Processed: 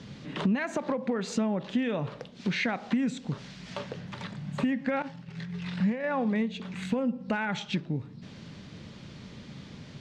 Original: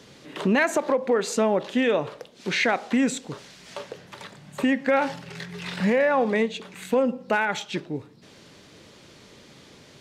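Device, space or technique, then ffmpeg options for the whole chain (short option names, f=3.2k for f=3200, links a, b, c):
jukebox: -filter_complex "[0:a]lowpass=5.3k,lowshelf=f=270:t=q:w=1.5:g=8.5,acompressor=threshold=-28dB:ratio=3,asettb=1/sr,asplit=3[a][b][c];[a]atrim=end=5.024[d];[b]atrim=start=5.02:end=6.04,asetpts=PTS-STARTPTS,afade=t=in:d=0.004:c=qsin,afade=t=out:st=1.016:d=0.004:c=qsin,agate=range=-33dB:threshold=-25dB:ratio=3:detection=peak[e];[c]atrim=start=6.036[f];[d][e]acrossfade=d=0.004:c1=hsin:c2=qsin[g];[g][f]acrossfade=d=0.004:c1=qsin:c2=hsin"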